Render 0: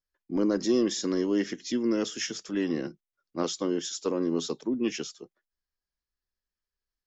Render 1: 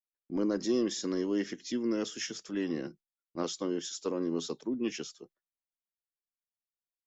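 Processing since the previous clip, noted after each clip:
noise gate with hold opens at −44 dBFS
level −4.5 dB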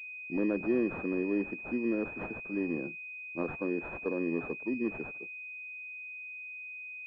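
switching amplifier with a slow clock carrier 2,500 Hz

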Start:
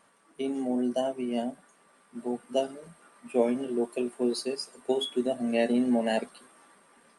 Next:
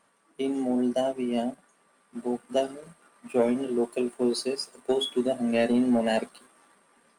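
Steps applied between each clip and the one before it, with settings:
leveller curve on the samples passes 1
level −1 dB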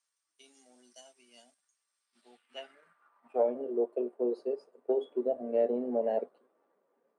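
band-pass filter sweep 5,900 Hz → 480 Hz, 0:01.99–0:03.64
dynamic equaliser 600 Hz, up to +5 dB, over −42 dBFS, Q 0.77
level −4 dB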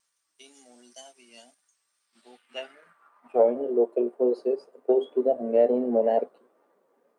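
tape wow and flutter 47 cents
level +7.5 dB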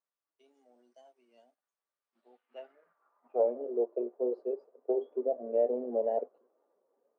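resonant band-pass 530 Hz, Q 1.1
level −7 dB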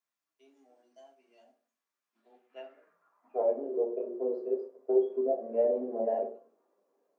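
convolution reverb RT60 0.40 s, pre-delay 3 ms, DRR 0 dB

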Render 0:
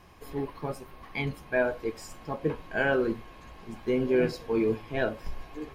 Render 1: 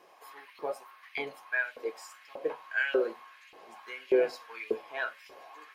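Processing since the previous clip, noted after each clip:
mains-hum notches 50/100/150/200/250 Hz
auto-filter high-pass saw up 1.7 Hz 400–2,700 Hz
level −4 dB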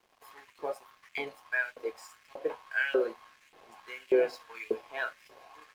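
dead-zone distortion −57.5 dBFS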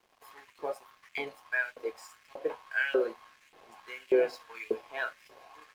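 no processing that can be heard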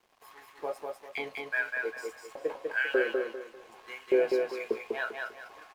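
repeating echo 198 ms, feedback 30%, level −3.5 dB

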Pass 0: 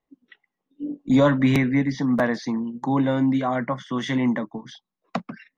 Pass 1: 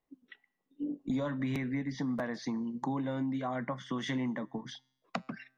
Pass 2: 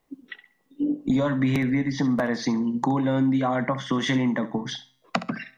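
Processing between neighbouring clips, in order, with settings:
downward compressor 6 to 1, threshold −29 dBFS, peak gain reduction 15 dB; tuned comb filter 130 Hz, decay 0.73 s, harmonics all, mix 30%
in parallel at −2 dB: downward compressor, threshold −41 dBFS, peak gain reduction 11.5 dB; on the sum: flutter between parallel walls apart 11.6 metres, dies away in 0.29 s; level +8.5 dB

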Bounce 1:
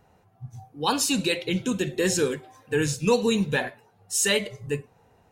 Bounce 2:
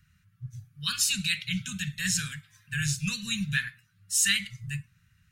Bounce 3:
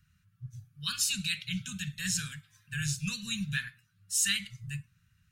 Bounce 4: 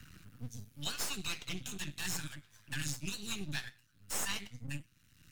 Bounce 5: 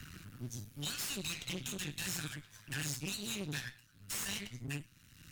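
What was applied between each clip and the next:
inverse Chebyshev band-stop filter 280–900 Hz, stop band 40 dB
parametric band 2,000 Hz −4.5 dB 0.41 octaves; level −3.5 dB
flanger 0.8 Hz, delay 3.8 ms, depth 6.6 ms, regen +68%; half-wave rectification; multiband upward and downward compressor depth 70%; level +2.5 dB
tube saturation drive 41 dB, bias 0.4; level +7.5 dB

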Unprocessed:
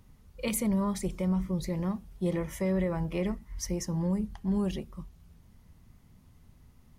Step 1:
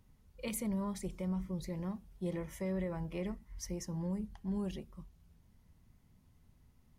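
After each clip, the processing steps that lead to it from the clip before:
notch filter 1,200 Hz, Q 21
level −8 dB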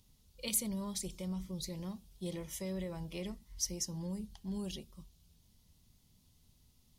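high shelf with overshoot 2,600 Hz +11.5 dB, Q 1.5
level −3 dB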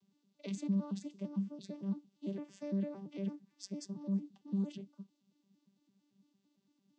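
vocoder with an arpeggio as carrier bare fifth, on G3, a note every 113 ms
level +3 dB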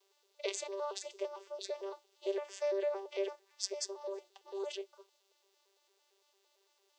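linear-phase brick-wall high-pass 360 Hz
level +12 dB

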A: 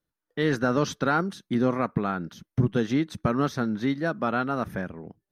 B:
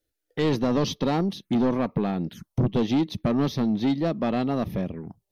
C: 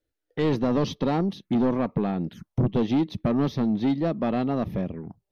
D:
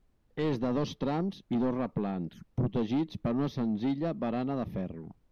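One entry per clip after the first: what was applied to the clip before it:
phaser swept by the level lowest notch 180 Hz, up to 1,500 Hz, full sweep at −28.5 dBFS; soft clipping −23.5 dBFS, distortion −10 dB; level +6.5 dB
high-shelf EQ 4,200 Hz −10.5 dB
background noise brown −60 dBFS; level −6.5 dB

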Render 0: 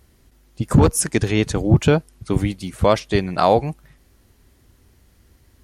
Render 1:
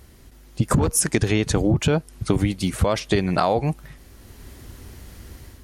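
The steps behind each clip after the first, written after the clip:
automatic gain control gain up to 7 dB
brickwall limiter −7.5 dBFS, peak gain reduction 6 dB
downward compressor 5 to 1, threshold −23 dBFS, peak gain reduction 11 dB
level +6.5 dB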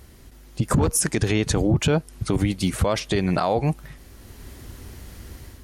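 brickwall limiter −12 dBFS, peak gain reduction 7 dB
level +1 dB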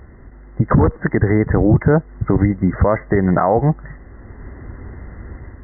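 linear-phase brick-wall low-pass 2,100 Hz
level +7 dB

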